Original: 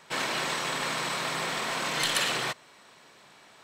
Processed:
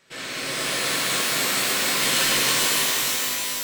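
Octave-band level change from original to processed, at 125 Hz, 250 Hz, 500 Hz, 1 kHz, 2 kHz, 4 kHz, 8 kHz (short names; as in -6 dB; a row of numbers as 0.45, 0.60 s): +4.5, +7.0, +5.0, +2.5, +6.5, +9.0, +13.5 dB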